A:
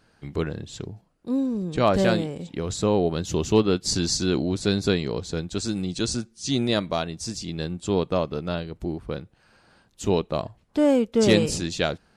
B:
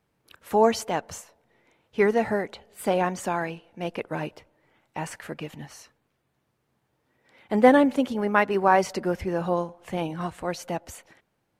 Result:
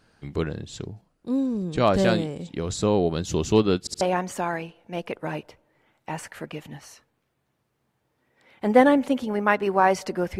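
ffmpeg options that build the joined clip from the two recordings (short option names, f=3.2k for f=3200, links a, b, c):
-filter_complex "[0:a]apad=whole_dur=10.39,atrim=end=10.39,asplit=3[a][b][c];[a]atrim=end=3.872[d];[b]atrim=start=3.798:end=3.872[e];[c]atrim=start=3.798:end=3.872[f];[1:a]atrim=start=2.888:end=9.27[g];[d][e]acrossfade=d=0.004:c1=hsin:c2=hsin[h];[h][f]acrossfade=d=0.004:c1=hsin:c2=hsin[i];[i][g]acrossfade=d=0.004:c1=hsin:c2=hsin"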